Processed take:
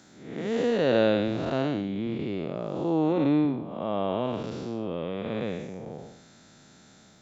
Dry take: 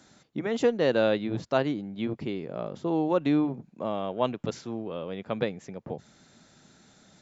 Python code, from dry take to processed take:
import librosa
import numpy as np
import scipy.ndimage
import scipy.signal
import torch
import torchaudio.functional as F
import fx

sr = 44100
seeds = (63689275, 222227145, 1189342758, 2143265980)

y = fx.spec_blur(x, sr, span_ms=271.0)
y = fx.peak_eq(y, sr, hz=6500.0, db=-6.5, octaves=0.42, at=(3.12, 4.91))
y = y * 10.0 ** (4.5 / 20.0)